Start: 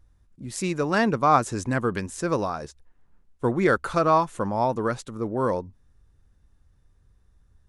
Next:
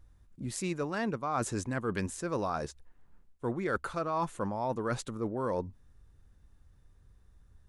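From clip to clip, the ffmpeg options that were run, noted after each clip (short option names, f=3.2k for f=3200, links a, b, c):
-af "equalizer=f=5.5k:w=4.2:g=-2,areverse,acompressor=threshold=-29dB:ratio=8,areverse"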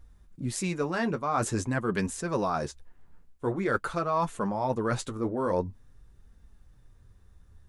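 -af "flanger=delay=4.3:depth=7.9:regen=-35:speed=0.47:shape=sinusoidal,volume=8dB"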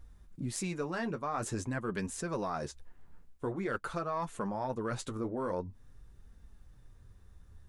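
-af "aeval=exprs='0.224*(cos(1*acos(clip(val(0)/0.224,-1,1)))-cos(1*PI/2))+0.0282*(cos(2*acos(clip(val(0)/0.224,-1,1)))-cos(2*PI/2))':c=same,acompressor=threshold=-35dB:ratio=2.5"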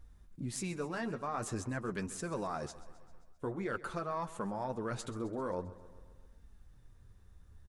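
-af "aecho=1:1:132|264|396|528|660|792:0.141|0.0848|0.0509|0.0305|0.0183|0.011,volume=-2.5dB"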